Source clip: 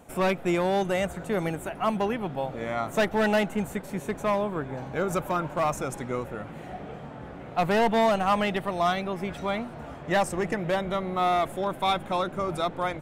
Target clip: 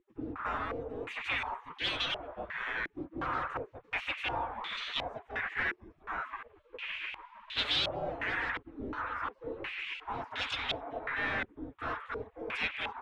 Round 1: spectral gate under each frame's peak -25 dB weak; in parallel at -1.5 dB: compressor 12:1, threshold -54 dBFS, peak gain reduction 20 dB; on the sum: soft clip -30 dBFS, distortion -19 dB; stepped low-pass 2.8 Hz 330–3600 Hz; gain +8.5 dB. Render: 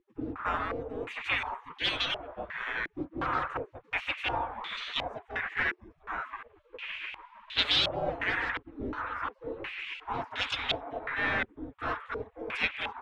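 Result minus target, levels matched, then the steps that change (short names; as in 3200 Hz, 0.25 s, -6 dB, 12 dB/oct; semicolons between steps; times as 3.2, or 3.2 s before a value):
soft clip: distortion -11 dB
change: soft clip -41 dBFS, distortion -9 dB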